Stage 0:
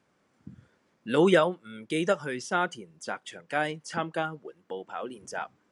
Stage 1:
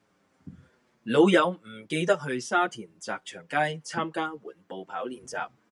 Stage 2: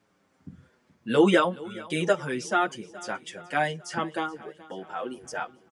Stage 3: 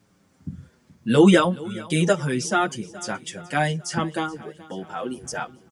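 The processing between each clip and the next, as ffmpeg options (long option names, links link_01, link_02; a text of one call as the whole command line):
ffmpeg -i in.wav -filter_complex "[0:a]asplit=2[link_01][link_02];[link_02]adelay=6.9,afreqshift=-0.67[link_03];[link_01][link_03]amix=inputs=2:normalize=1,volume=5dB" out.wav
ffmpeg -i in.wav -af "aecho=1:1:425|850|1275|1700:0.1|0.054|0.0292|0.0157" out.wav
ffmpeg -i in.wav -af "bass=frequency=250:gain=11,treble=frequency=4000:gain=8,volume=2dB" out.wav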